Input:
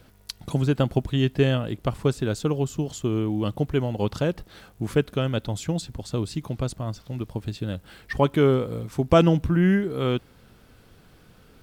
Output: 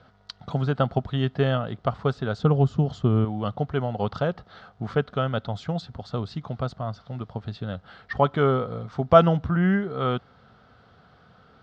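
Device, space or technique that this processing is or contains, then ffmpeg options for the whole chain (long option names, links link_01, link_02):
guitar cabinet: -filter_complex "[0:a]asettb=1/sr,asplit=3[link_01][link_02][link_03];[link_01]atrim=end=2.394[link_04];[link_02]atrim=start=2.39:end=3.25,asetpts=PTS-STARTPTS,afade=type=in:duration=0.004:curve=qsin,afade=type=out:start_time=0.856:duration=0.004:curve=qsin,lowshelf=frequency=370:gain=10[link_05];[link_03]atrim=start=3.246[link_06];[link_04][link_05]acrossfade=duration=0.004:curve1=hsin:curve2=qsin[link_07];[link_07][link_06]acrossfade=duration=0.004:curve1=qsin:curve2=hsin,highpass=79,equalizer=frequency=320:width_type=q:width=4:gain=-10,equalizer=frequency=720:width_type=q:width=4:gain=8,equalizer=frequency=1300:width_type=q:width=4:gain=9,equalizer=frequency=2500:width_type=q:width=4:gain=-8,lowpass=frequency=4500:width=0.5412,lowpass=frequency=4500:width=1.3066,volume=-1dB"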